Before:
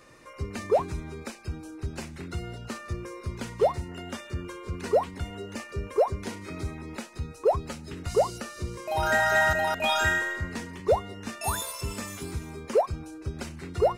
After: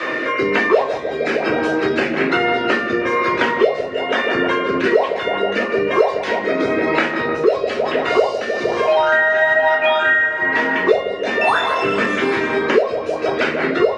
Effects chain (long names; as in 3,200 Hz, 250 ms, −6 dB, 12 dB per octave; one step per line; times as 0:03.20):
Chebyshev band-pass filter 320–4,000 Hz, order 2
parametric band 1,800 Hz +12 dB 2.3 octaves
automatic gain control
tape delay 155 ms, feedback 74%, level −9 dB, low-pass 1,600 Hz
rotating-speaker cabinet horn 1.1 Hz
convolution reverb RT60 0.40 s, pre-delay 3 ms, DRR −5.5 dB
multiband upward and downward compressor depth 100%
level −5.5 dB